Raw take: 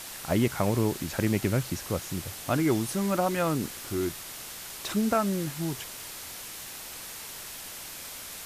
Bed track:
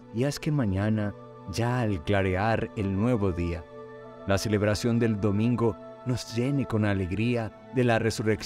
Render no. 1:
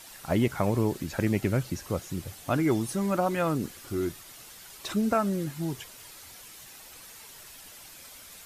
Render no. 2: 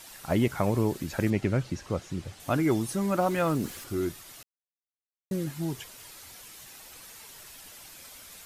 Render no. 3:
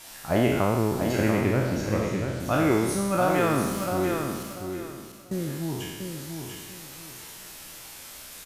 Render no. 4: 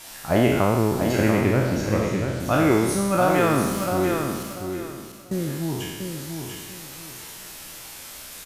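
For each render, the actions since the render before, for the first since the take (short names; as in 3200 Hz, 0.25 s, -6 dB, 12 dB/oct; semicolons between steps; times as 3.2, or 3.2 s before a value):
denoiser 9 dB, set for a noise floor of -41 dBFS
1.3–2.4 air absorption 64 m; 3.18–3.84 G.711 law mismatch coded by mu; 4.43–5.31 mute
spectral trails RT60 1.28 s; on a send: feedback echo 0.69 s, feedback 25%, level -6 dB
gain +3.5 dB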